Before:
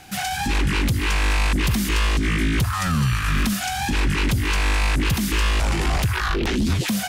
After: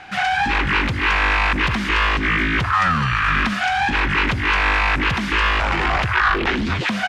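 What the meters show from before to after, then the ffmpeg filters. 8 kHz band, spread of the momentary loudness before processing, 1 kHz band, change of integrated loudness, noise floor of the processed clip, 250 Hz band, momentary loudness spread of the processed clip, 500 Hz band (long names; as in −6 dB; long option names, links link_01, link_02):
−10.5 dB, 2 LU, +8.5 dB, +3.5 dB, −24 dBFS, −1.0 dB, 3 LU, +2.5 dB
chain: -filter_complex "[0:a]lowpass=1600,tiltshelf=frequency=730:gain=-10,acontrast=70,asplit=2[link_01][link_02];[link_02]adelay=100,highpass=300,lowpass=3400,asoftclip=type=hard:threshold=-15dB,volume=-16dB[link_03];[link_01][link_03]amix=inputs=2:normalize=0"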